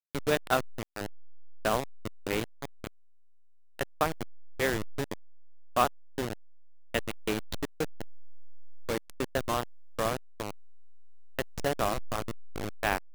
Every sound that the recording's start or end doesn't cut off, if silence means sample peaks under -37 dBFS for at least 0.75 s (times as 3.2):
3.79–10.51